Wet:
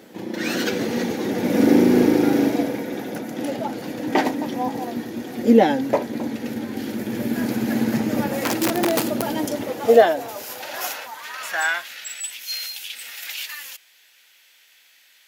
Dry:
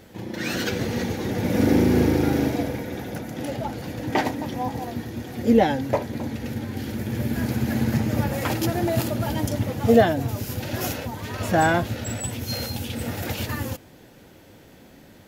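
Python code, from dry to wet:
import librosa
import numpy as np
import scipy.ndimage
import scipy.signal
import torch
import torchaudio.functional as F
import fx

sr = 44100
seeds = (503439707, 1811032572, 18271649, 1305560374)

y = fx.overflow_wrap(x, sr, gain_db=15.5, at=(8.37, 9.22))
y = fx.filter_sweep_highpass(y, sr, from_hz=250.0, to_hz=2400.0, start_s=9.17, end_s=12.19, q=1.3)
y = y * librosa.db_to_amplitude(2.0)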